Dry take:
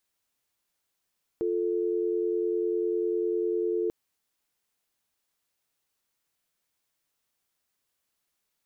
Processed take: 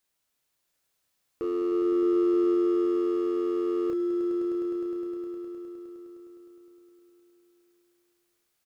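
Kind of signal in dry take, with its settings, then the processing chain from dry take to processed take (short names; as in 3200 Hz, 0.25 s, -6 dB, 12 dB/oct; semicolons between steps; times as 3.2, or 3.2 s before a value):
call progress tone dial tone, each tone -27.5 dBFS 2.49 s
hard clip -26 dBFS; doubler 31 ms -6 dB; swelling echo 0.103 s, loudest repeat 5, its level -9.5 dB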